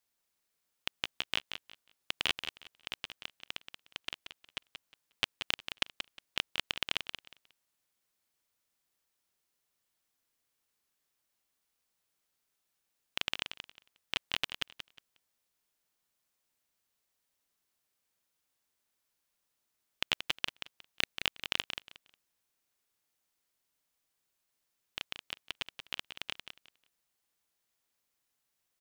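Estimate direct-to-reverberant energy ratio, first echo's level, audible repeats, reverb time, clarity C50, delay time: none, -8.5 dB, 2, none, none, 0.18 s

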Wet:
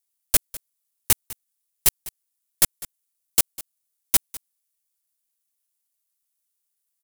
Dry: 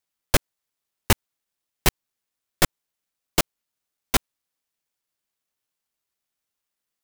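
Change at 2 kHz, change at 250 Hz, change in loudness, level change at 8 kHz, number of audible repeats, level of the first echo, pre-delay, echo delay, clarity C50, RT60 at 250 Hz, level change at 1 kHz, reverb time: -6.5 dB, -11.0 dB, +3.0 dB, +6.0 dB, 1, -18.5 dB, none, 0.201 s, none, none, -9.5 dB, none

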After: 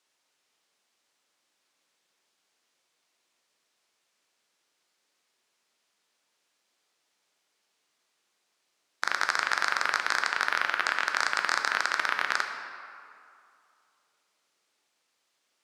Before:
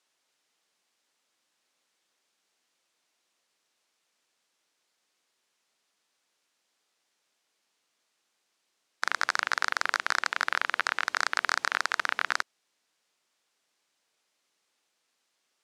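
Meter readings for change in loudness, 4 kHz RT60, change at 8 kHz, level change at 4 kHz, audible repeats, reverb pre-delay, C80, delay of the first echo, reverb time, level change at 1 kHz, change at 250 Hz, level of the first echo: +1.5 dB, 1.4 s, +0.5 dB, +1.0 dB, none, 10 ms, 6.5 dB, none, 2.4 s, +1.5 dB, +1.5 dB, none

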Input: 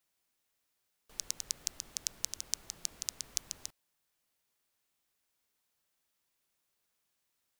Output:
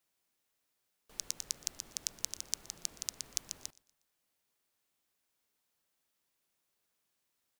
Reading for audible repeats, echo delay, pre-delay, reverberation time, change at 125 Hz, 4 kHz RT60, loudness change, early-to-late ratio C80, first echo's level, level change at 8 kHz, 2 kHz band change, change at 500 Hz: 2, 0.12 s, none, none, -0.5 dB, none, -1.0 dB, none, -23.0 dB, -1.0 dB, -0.5 dB, +1.0 dB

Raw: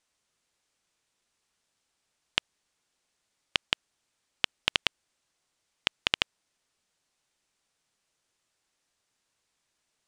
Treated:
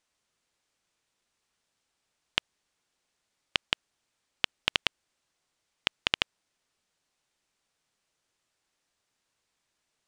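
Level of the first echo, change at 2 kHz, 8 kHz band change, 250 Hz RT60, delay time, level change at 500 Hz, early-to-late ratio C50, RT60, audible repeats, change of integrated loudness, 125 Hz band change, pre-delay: none, -0.5 dB, -2.0 dB, none, none, 0.0 dB, none, none, none, -0.5 dB, 0.0 dB, none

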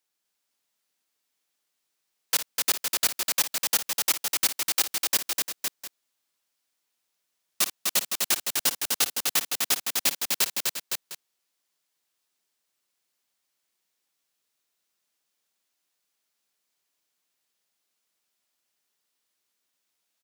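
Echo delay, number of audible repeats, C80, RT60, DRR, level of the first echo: 56 ms, 5, none, none, none, -12.0 dB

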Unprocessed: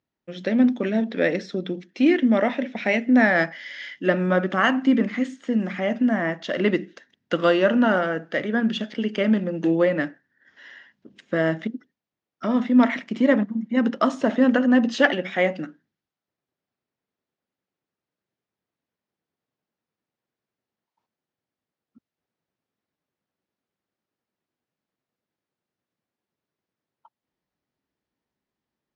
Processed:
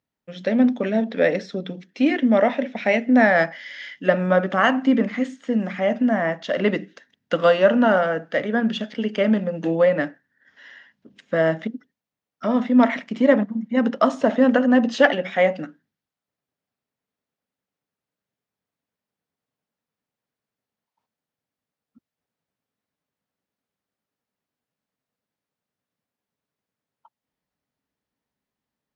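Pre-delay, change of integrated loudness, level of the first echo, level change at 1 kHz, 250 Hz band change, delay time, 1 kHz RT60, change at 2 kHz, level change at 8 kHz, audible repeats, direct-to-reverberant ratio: none, +1.5 dB, none, +3.5 dB, 0.0 dB, none, none, +1.0 dB, n/a, none, none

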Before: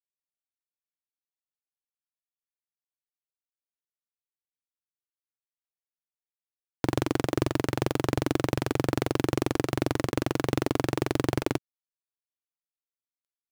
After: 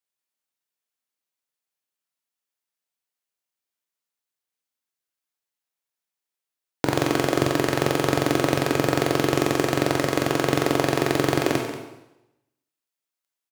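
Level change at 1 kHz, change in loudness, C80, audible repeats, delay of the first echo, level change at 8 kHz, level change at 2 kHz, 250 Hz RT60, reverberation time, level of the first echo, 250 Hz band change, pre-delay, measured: +7.5 dB, +6.0 dB, 6.5 dB, 1, 0.185 s, +8.5 dB, +8.5 dB, 0.90 s, 0.95 s, -12.5 dB, +4.5 dB, 7 ms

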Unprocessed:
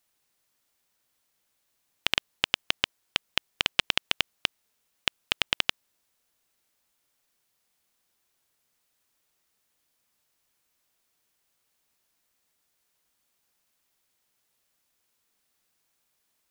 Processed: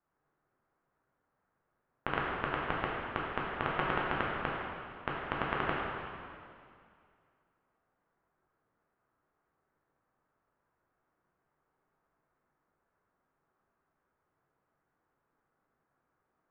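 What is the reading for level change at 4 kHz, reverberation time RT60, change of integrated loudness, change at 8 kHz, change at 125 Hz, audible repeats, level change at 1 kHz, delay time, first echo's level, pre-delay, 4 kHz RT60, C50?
-20.0 dB, 2.3 s, -7.0 dB, under -35 dB, +6.5 dB, none, +5.5 dB, none, none, 5 ms, 2.1 s, -1.5 dB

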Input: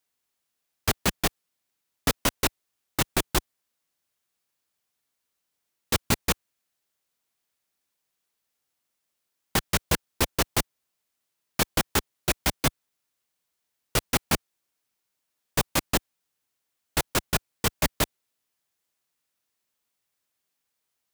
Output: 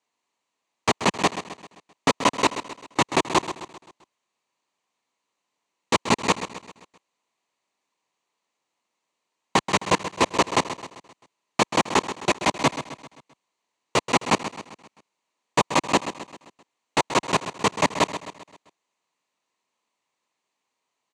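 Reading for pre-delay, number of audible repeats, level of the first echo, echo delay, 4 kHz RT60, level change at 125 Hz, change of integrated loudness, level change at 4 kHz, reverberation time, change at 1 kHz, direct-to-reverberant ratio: none, 4, -11.5 dB, 0.131 s, none, -1.5 dB, +3.0 dB, +2.0 dB, none, +10.0 dB, none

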